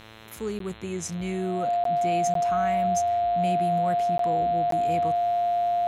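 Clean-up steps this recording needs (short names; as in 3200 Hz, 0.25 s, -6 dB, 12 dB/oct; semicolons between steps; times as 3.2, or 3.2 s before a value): de-hum 110.3 Hz, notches 38; notch 700 Hz, Q 30; interpolate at 0.59/1.84/2.34/4.18/4.71, 13 ms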